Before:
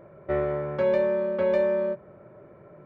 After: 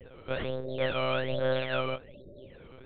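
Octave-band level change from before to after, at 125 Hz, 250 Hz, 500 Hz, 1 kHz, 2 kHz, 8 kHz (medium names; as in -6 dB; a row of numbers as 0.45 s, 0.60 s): +1.0 dB, -6.0 dB, -7.5 dB, 0.0 dB, +2.5 dB, no reading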